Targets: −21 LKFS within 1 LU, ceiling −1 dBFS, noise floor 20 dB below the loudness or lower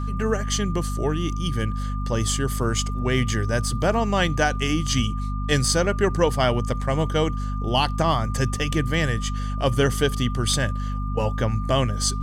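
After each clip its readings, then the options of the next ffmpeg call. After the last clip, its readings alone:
mains hum 50 Hz; hum harmonics up to 250 Hz; level of the hum −24 dBFS; interfering tone 1,200 Hz; level of the tone −35 dBFS; integrated loudness −23.5 LKFS; sample peak −7.0 dBFS; target loudness −21.0 LKFS
→ -af "bandreject=frequency=50:width_type=h:width=6,bandreject=frequency=100:width_type=h:width=6,bandreject=frequency=150:width_type=h:width=6,bandreject=frequency=200:width_type=h:width=6,bandreject=frequency=250:width_type=h:width=6"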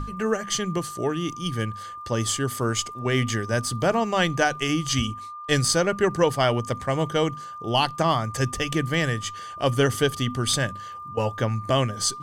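mains hum none found; interfering tone 1,200 Hz; level of the tone −35 dBFS
→ -af "bandreject=frequency=1200:width=30"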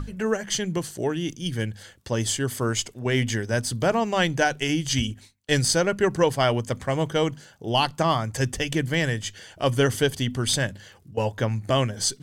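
interfering tone none found; integrated loudness −25.0 LKFS; sample peak −7.5 dBFS; target loudness −21.0 LKFS
→ -af "volume=4dB"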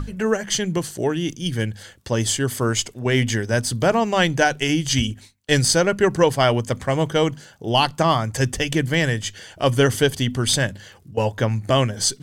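integrated loudness −21.0 LKFS; sample peak −3.5 dBFS; background noise floor −48 dBFS

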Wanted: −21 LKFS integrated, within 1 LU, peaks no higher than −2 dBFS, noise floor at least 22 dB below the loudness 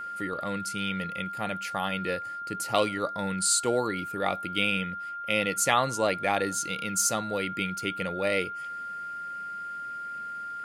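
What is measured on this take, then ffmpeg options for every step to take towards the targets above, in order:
interfering tone 1,400 Hz; level of the tone −34 dBFS; integrated loudness −29.0 LKFS; sample peak −7.0 dBFS; target loudness −21.0 LKFS
→ -af "bandreject=frequency=1400:width=30"
-af "volume=8dB,alimiter=limit=-2dB:level=0:latency=1"

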